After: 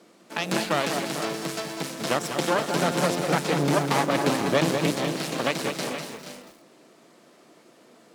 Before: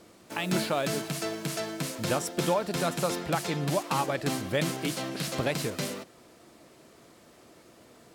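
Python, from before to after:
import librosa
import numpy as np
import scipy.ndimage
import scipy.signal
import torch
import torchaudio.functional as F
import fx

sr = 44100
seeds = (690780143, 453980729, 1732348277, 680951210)

y = fx.low_shelf(x, sr, hz=290.0, db=9.0, at=(2.7, 5.05))
y = fx.cheby_harmonics(y, sr, harmonics=(6,), levels_db=(-10,), full_scale_db=-11.0)
y = scipy.signal.sosfilt(scipy.signal.butter(4, 160.0, 'highpass', fs=sr, output='sos'), y)
y = fx.high_shelf(y, sr, hz=11000.0, db=-8.5)
y = fx.echo_multitap(y, sr, ms=(197, 444, 476), db=(-9.0, -14.0, -10.5))
y = fx.echo_crushed(y, sr, ms=204, feedback_pct=35, bits=7, wet_db=-11.0)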